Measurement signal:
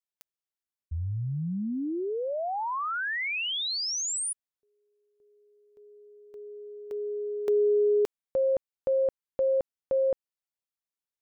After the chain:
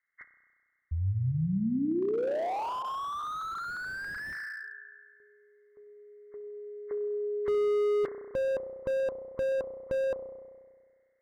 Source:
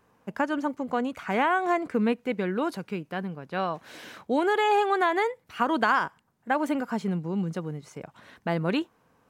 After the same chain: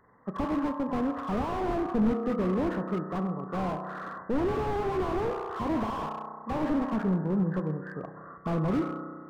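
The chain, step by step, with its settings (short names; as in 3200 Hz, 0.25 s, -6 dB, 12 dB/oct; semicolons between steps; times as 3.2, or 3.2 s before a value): nonlinear frequency compression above 1000 Hz 4:1; spring tank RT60 1.7 s, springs 32 ms, chirp 60 ms, DRR 8 dB; slew limiter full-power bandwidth 19 Hz; gain +1.5 dB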